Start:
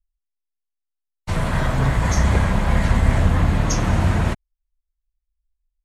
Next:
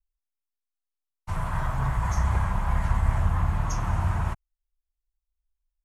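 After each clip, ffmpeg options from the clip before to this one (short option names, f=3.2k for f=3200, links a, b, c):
-af "equalizer=f=250:t=o:w=1:g=-11,equalizer=f=500:t=o:w=1:g=-10,equalizer=f=1k:t=o:w=1:g=6,equalizer=f=2k:t=o:w=1:g=-5,equalizer=f=4k:t=o:w=1:g=-10,equalizer=f=8k:t=o:w=1:g=-4,volume=-5.5dB"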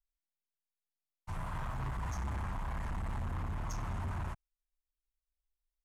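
-af "asoftclip=type=hard:threshold=-25.5dB,volume=-8.5dB"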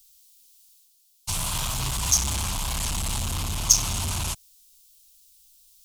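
-af "aexciter=amount=10.9:drive=7.4:freq=2.8k,areverse,acompressor=mode=upward:threshold=-56dB:ratio=2.5,areverse,volume=7.5dB"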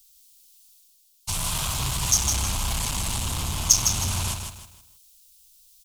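-af "aecho=1:1:157|314|471|628:0.501|0.17|0.0579|0.0197"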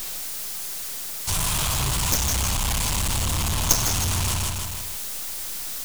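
-af "aeval=exprs='val(0)+0.5*0.0841*sgn(val(0))':c=same,aeval=exprs='0.891*(cos(1*acos(clip(val(0)/0.891,-1,1)))-cos(1*PI/2))+0.282*(cos(4*acos(clip(val(0)/0.891,-1,1)))-cos(4*PI/2))+0.316*(cos(7*acos(clip(val(0)/0.891,-1,1)))-cos(7*PI/2))':c=same,acrusher=bits=3:mix=0:aa=0.5,volume=-5dB"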